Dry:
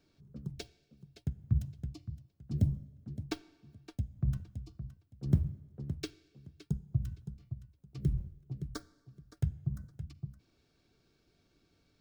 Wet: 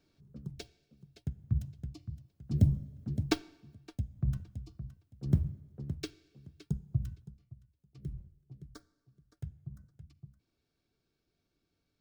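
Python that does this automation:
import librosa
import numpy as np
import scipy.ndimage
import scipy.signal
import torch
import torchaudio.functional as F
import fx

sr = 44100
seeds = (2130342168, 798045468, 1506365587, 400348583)

y = fx.gain(x, sr, db=fx.line((1.86, -1.5), (3.3, 8.5), (3.78, 0.0), (7.03, 0.0), (7.44, -10.0)))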